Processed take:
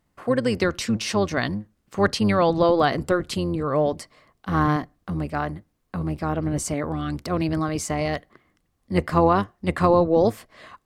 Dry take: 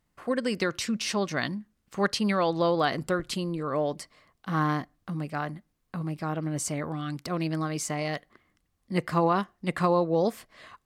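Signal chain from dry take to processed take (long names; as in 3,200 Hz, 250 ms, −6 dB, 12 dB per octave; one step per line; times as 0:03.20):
sub-octave generator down 1 octave, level −5 dB
parametric band 470 Hz +4.5 dB 3 octaves
level +2 dB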